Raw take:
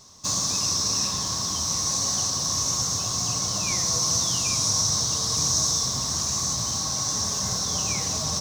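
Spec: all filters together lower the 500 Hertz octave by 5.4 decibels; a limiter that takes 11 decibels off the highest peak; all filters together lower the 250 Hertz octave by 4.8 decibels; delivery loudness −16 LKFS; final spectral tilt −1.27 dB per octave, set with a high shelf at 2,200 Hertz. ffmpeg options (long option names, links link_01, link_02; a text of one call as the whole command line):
ffmpeg -i in.wav -af "equalizer=frequency=250:width_type=o:gain=-6.5,equalizer=frequency=500:width_type=o:gain=-6,highshelf=frequency=2200:gain=6,volume=6.5dB,alimiter=limit=-10dB:level=0:latency=1" out.wav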